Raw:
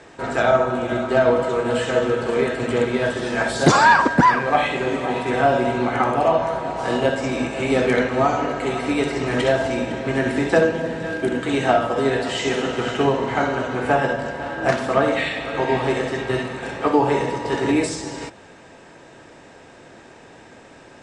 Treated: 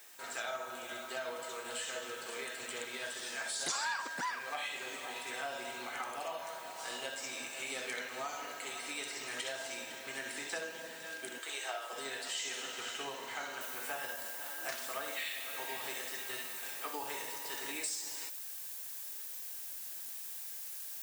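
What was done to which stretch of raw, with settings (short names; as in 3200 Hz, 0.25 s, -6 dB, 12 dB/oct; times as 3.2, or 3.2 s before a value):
11.38–11.93 elliptic high-pass 330 Hz
13.61 noise floor step -60 dB -46 dB
whole clip: differentiator; compressor 2:1, threshold -37 dBFS; gain -1 dB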